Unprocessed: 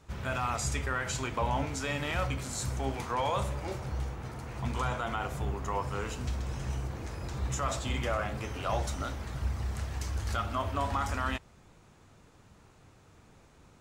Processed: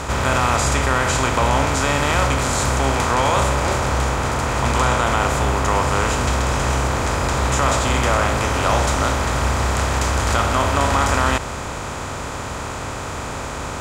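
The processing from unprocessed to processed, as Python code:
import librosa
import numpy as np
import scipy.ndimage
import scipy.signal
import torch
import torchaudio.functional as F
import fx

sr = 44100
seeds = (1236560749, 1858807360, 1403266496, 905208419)

y = fx.bin_compress(x, sr, power=0.4)
y = F.gain(torch.from_numpy(y), 8.0).numpy()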